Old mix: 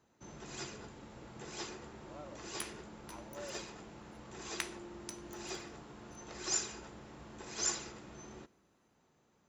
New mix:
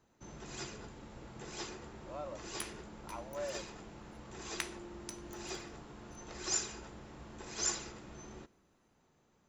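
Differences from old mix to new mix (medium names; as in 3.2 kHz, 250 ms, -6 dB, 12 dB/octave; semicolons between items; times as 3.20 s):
speech +7.5 dB; master: remove high-pass 78 Hz 6 dB/octave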